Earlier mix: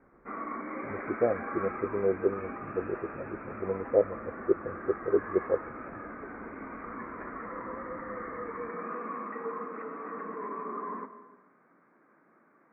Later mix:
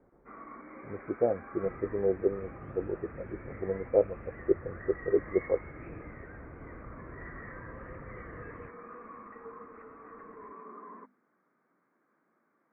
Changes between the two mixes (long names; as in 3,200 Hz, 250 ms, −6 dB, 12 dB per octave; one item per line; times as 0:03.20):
first sound −8.0 dB
second sound +10.0 dB
reverb: off